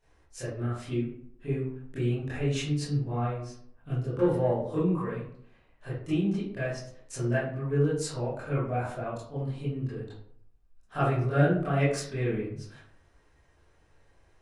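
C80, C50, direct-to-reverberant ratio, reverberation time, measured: 6.5 dB, 2.0 dB, -13.5 dB, 0.65 s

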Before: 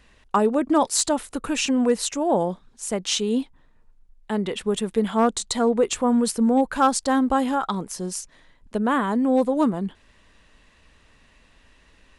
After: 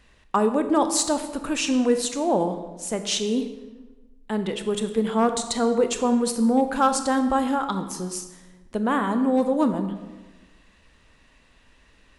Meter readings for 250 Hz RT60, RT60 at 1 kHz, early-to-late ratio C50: 1.3 s, 1.2 s, 9.5 dB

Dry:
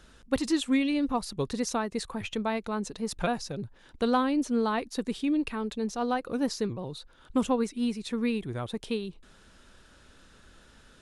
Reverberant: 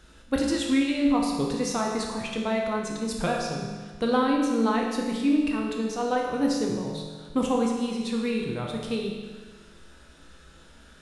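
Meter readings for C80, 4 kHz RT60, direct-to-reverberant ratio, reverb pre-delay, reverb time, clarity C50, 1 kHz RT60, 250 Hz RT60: 4.0 dB, 1.4 s, -1.0 dB, 5 ms, 1.5 s, 2.0 dB, 1.5 s, 1.5 s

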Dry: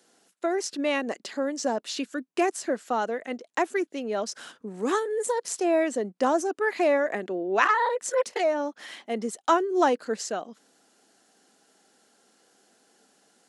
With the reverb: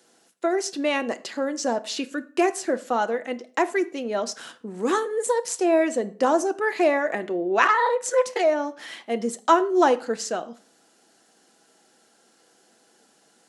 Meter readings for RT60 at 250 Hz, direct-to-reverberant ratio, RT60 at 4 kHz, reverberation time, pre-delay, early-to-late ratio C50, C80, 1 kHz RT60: 0.50 s, 9.5 dB, 0.35 s, 0.45 s, 6 ms, 18.5 dB, 21.5 dB, 0.45 s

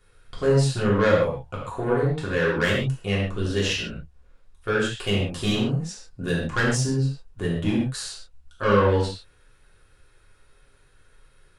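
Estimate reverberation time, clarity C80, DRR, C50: not exponential, 5.0 dB, -6.5 dB, 2.0 dB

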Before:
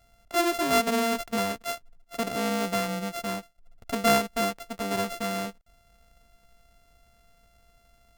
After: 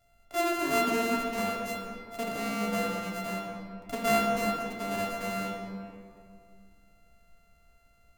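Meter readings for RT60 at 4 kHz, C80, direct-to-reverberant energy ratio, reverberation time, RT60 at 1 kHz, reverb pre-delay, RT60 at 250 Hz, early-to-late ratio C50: 1.3 s, 2.5 dB, -2.0 dB, 2.3 s, 2.1 s, 7 ms, 2.7 s, 1.0 dB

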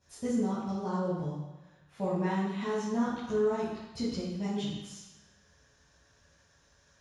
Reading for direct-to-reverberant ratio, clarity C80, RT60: -12.5 dB, 2.5 dB, 1.1 s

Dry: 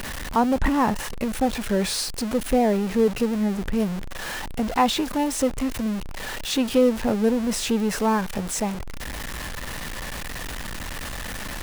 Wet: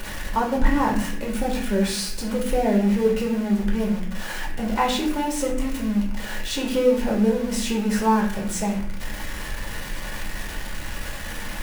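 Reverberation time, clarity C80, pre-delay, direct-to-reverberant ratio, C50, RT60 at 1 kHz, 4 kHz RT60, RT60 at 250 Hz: 0.65 s, 8.0 dB, 3 ms, -2.5 dB, 5.5 dB, 0.60 s, 0.50 s, 1.0 s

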